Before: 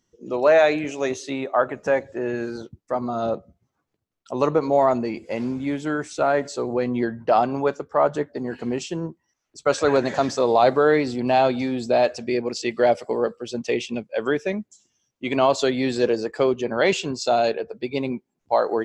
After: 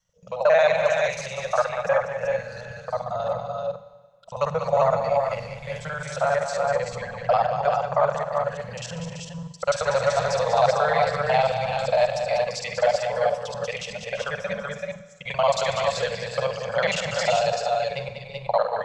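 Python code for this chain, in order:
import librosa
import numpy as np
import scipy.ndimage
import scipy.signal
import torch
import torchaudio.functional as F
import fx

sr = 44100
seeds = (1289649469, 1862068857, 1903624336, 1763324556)

p1 = fx.local_reverse(x, sr, ms=45.0)
p2 = scipy.signal.sosfilt(scipy.signal.ellip(3, 1.0, 50, [180.0, 520.0], 'bandstop', fs=sr, output='sos'), p1)
p3 = p2 + fx.echo_multitap(p2, sr, ms=(193, 345, 379, 386), db=(-8.0, -14.0, -9.5, -5.0), dry=0)
p4 = fx.rev_schroeder(p3, sr, rt60_s=1.4, comb_ms=31, drr_db=12.5)
y = p4 * 10.0 ** (-1.0 / 20.0)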